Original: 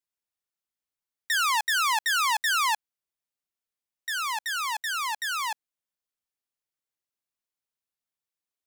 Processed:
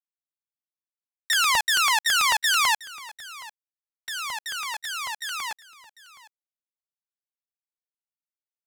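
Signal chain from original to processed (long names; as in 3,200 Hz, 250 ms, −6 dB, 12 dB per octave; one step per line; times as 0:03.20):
power curve on the samples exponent 2
on a send: single-tap delay 747 ms −19 dB
on the sum: regular buffer underruns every 0.11 s, samples 64, repeat, from 0:00.34
level +5.5 dB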